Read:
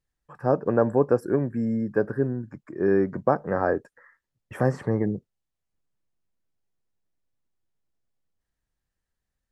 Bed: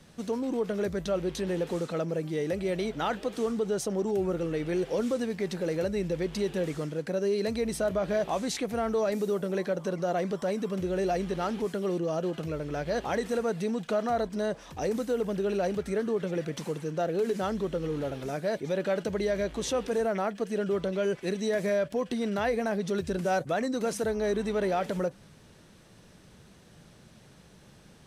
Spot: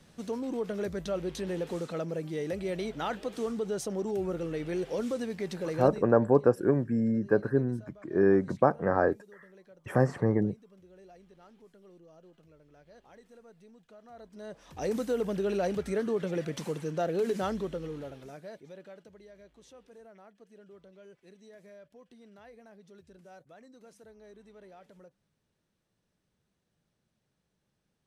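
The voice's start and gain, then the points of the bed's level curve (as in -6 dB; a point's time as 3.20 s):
5.35 s, -1.5 dB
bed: 5.88 s -3.5 dB
6.14 s -26 dB
14.01 s -26 dB
14.90 s -1 dB
17.47 s -1 dB
19.22 s -25 dB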